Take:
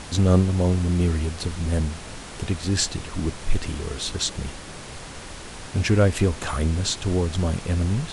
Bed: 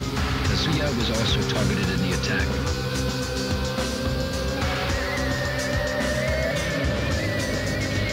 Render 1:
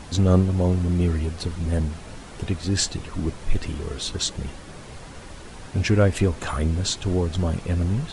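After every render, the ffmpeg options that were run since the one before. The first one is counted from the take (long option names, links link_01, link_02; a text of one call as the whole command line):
ffmpeg -i in.wav -af "afftdn=noise_reduction=7:noise_floor=-39" out.wav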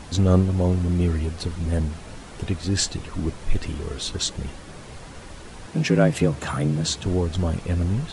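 ffmpeg -i in.wav -filter_complex "[0:a]asettb=1/sr,asplit=3[link_01][link_02][link_03];[link_01]atrim=end=5.674[link_04];[link_02]atrim=start=5.67:end=7.06,asetpts=PTS-STARTPTS,afade=type=in:duration=0.004:curve=qsin,afade=type=out:start_time=1.386:duration=0.004:curve=qsin,afreqshift=64[link_05];[link_03]atrim=start=7.056[link_06];[link_04][link_05]acrossfade=duration=0.004:curve1=hsin:curve2=qsin[link_07];[link_07][link_06]acrossfade=duration=0.004:curve1=qsin:curve2=hsin" out.wav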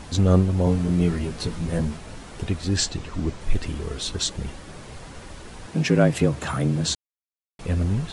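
ffmpeg -i in.wav -filter_complex "[0:a]asettb=1/sr,asplit=3[link_01][link_02][link_03];[link_01]atrim=end=0.654[link_04];[link_02]atrim=start=0.65:end=1.97,asetpts=PTS-STARTPTS,afade=type=in:duration=0.004:curve=qsin,afade=type=out:start_time=1.316:duration=0.004:curve=qsin,asplit=2[link_05][link_06];[link_06]adelay=18,volume=-3dB[link_07];[link_05][link_07]amix=inputs=2:normalize=0,atrim=end_sample=58212[link_08];[link_03]atrim=start=1.966[link_09];[link_04][link_08]acrossfade=duration=0.004:curve1=hsin:curve2=qsin[link_10];[link_10][link_09]acrossfade=duration=0.004:curve1=qsin:curve2=hsin,asettb=1/sr,asplit=3[link_11][link_12][link_13];[link_11]atrim=end=2.774[link_14];[link_12]atrim=start=2.77:end=3.41,asetpts=PTS-STARTPTS,afade=type=in:duration=0.004:curve=qsin,afade=type=out:start_time=0.636:duration=0.004:curve=qsin,lowpass=frequency=8400:width=0.5412,lowpass=frequency=8400:width=1.3066[link_15];[link_13]atrim=start=3.406[link_16];[link_14][link_15]acrossfade=duration=0.004:curve1=hsin:curve2=qsin[link_17];[link_17][link_16]acrossfade=duration=0.004:curve1=qsin:curve2=hsin,asplit=3[link_18][link_19][link_20];[link_18]atrim=end=6.95,asetpts=PTS-STARTPTS,afade=type=out:start_time=6.946:duration=0.004:curve=hsin[link_21];[link_19]atrim=start=6.95:end=7.59,asetpts=PTS-STARTPTS,volume=0[link_22];[link_20]atrim=start=7.59,asetpts=PTS-STARTPTS,afade=type=in:duration=0.004:curve=hsin[link_23];[link_21][link_22][link_23]concat=n=3:v=0:a=1" out.wav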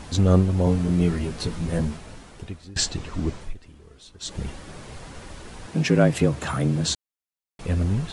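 ffmpeg -i in.wav -filter_complex "[0:a]asplit=4[link_01][link_02][link_03][link_04];[link_01]atrim=end=2.76,asetpts=PTS-STARTPTS,afade=type=out:start_time=1.84:duration=0.92:silence=0.0668344[link_05];[link_02]atrim=start=2.76:end=3.54,asetpts=PTS-STARTPTS,afade=type=in:duration=0.004:curve=hsin:silence=0.0668344,afade=type=out:start_time=0.61:duration=0.17:silence=0.11885[link_06];[link_03]atrim=start=3.54:end=4.2,asetpts=PTS-STARTPTS,volume=-18.5dB[link_07];[link_04]atrim=start=4.2,asetpts=PTS-STARTPTS,afade=type=in:duration=0.17:silence=0.11885[link_08];[link_05][link_06][link_07][link_08]concat=n=4:v=0:a=1" out.wav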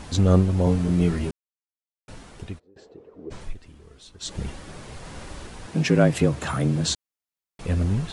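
ffmpeg -i in.wav -filter_complex "[0:a]asplit=3[link_01][link_02][link_03];[link_01]afade=type=out:start_time=2.58:duration=0.02[link_04];[link_02]bandpass=frequency=450:width_type=q:width=5,afade=type=in:start_time=2.58:duration=0.02,afade=type=out:start_time=3.3:duration=0.02[link_05];[link_03]afade=type=in:start_time=3.3:duration=0.02[link_06];[link_04][link_05][link_06]amix=inputs=3:normalize=0,asettb=1/sr,asplit=3[link_07][link_08][link_09];[link_07]atrim=end=5.004[link_10];[link_08]atrim=start=5:end=5.47,asetpts=PTS-STARTPTS,afade=type=in:duration=0.004:curve=qsin,afade=type=out:start_time=0.466:duration=0.004:curve=qsin,asplit=2[link_11][link_12];[link_12]adelay=47,volume=-3.5dB[link_13];[link_11][link_13]amix=inputs=2:normalize=0,atrim=end_sample=20727[link_14];[link_09]atrim=start=5.466[link_15];[link_10][link_14]acrossfade=duration=0.004:curve1=hsin:curve2=qsin[link_16];[link_16][link_15]acrossfade=duration=0.004:curve1=qsin:curve2=hsin,asplit=3[link_17][link_18][link_19];[link_17]atrim=end=1.31,asetpts=PTS-STARTPTS,afade=type=out:start_time=1.306:duration=0.004:curve=hsin[link_20];[link_18]atrim=start=1.31:end=2.08,asetpts=PTS-STARTPTS,volume=0[link_21];[link_19]atrim=start=2.08,asetpts=PTS-STARTPTS,afade=type=in:duration=0.004:curve=hsin[link_22];[link_20][link_21][link_22]concat=n=3:v=0:a=1" out.wav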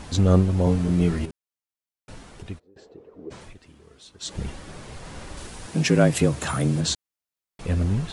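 ffmpeg -i in.wav -filter_complex "[0:a]asettb=1/sr,asplit=3[link_01][link_02][link_03];[link_01]atrim=end=1.254[link_04];[link_02]atrim=start=1.25:end=2.5,asetpts=PTS-STARTPTS,afade=type=in:duration=0.004:curve=qsin,afade=type=out:start_time=1.246:duration=0.004:curve=qsin,acompressor=threshold=-33dB:ratio=6:attack=3.2:release=140:knee=1:detection=peak[link_05];[link_03]atrim=start=2.496[link_06];[link_04][link_05]acrossfade=duration=0.004:curve1=hsin:curve2=qsin[link_07];[link_07][link_06]acrossfade=duration=0.004:curve1=qsin:curve2=hsin,asettb=1/sr,asplit=3[link_08][link_09][link_10];[link_08]atrim=end=3.244[link_11];[link_09]atrim=start=3.24:end=4.33,asetpts=PTS-STARTPTS,afade=type=in:duration=0.004:curve=qsin,afade=type=out:start_time=1.086:duration=0.004:curve=qsin,highpass=frequency=130:poles=1[link_12];[link_10]atrim=start=4.326[link_13];[link_11][link_12]acrossfade=duration=0.004:curve1=hsin:curve2=qsin[link_14];[link_14][link_13]acrossfade=duration=0.004:curve1=qsin:curve2=hsin,asettb=1/sr,asplit=3[link_15][link_16][link_17];[link_15]atrim=end=5.374[link_18];[link_16]atrim=start=5.37:end=6.81,asetpts=PTS-STARTPTS,afade=type=in:duration=0.004:curve=qsin,afade=type=out:start_time=1.436:duration=0.004:curve=qsin,highshelf=frequency=5800:gain=9.5[link_19];[link_17]atrim=start=6.806[link_20];[link_18][link_19]acrossfade=duration=0.004:curve1=hsin:curve2=qsin[link_21];[link_21][link_20]acrossfade=duration=0.004:curve1=qsin:curve2=hsin" out.wav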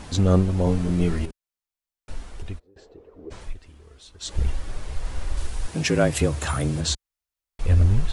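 ffmpeg -i in.wav -af "asubboost=boost=10.5:cutoff=53" out.wav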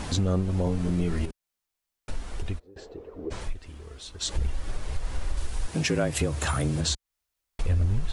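ffmpeg -i in.wav -filter_complex "[0:a]asplit=2[link_01][link_02];[link_02]alimiter=limit=-15.5dB:level=0:latency=1:release=204,volume=-0.5dB[link_03];[link_01][link_03]amix=inputs=2:normalize=0,acompressor=threshold=-29dB:ratio=2" out.wav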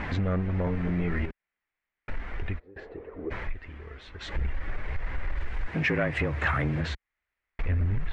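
ffmpeg -i in.wav -af "asoftclip=type=tanh:threshold=-20dB,lowpass=frequency=2000:width_type=q:width=3.5" out.wav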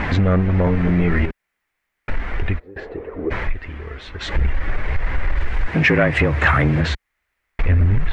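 ffmpeg -i in.wav -af "volume=11dB" out.wav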